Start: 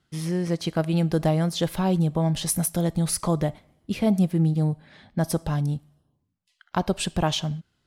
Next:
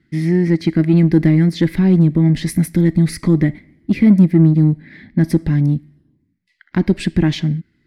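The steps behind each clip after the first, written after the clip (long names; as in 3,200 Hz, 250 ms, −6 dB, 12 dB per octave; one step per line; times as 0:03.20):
drawn EQ curve 110 Hz 0 dB, 320 Hz +9 dB, 470 Hz −7 dB, 710 Hz −14 dB, 1,300 Hz −11 dB, 2,000 Hz +9 dB, 2,900 Hz −10 dB, 4,600 Hz −6 dB, 6,500 Hz −14 dB
in parallel at −7 dB: soft clipping −21 dBFS, distortion −9 dB
on the sum: level +5 dB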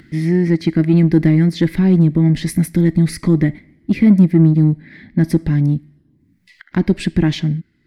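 upward compression, threshold −33 dBFS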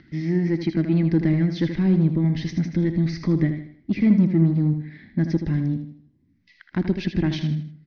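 Butterworth low-pass 6,200 Hz 96 dB per octave
on a send: repeating echo 79 ms, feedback 39%, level −8.5 dB
on the sum: level −7.5 dB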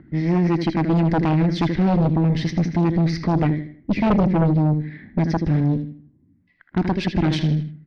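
low-pass that shuts in the quiet parts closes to 940 Hz, open at −18.5 dBFS
harmonic generator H 4 −7 dB, 5 −8 dB, 6 −7 dB, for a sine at −8 dBFS
level −4 dB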